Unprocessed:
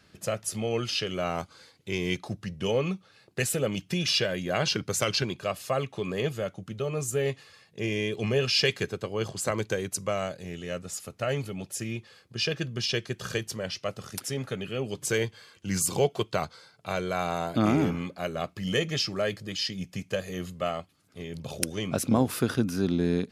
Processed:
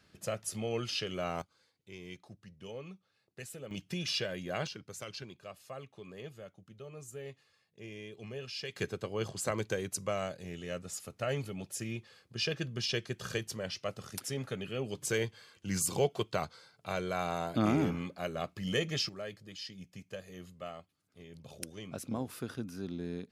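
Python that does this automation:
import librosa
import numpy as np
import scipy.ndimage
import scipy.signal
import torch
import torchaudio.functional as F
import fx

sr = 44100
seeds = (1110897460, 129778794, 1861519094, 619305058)

y = fx.gain(x, sr, db=fx.steps((0.0, -6.0), (1.42, -18.0), (3.71, -8.5), (4.67, -17.0), (8.76, -5.0), (19.09, -13.5)))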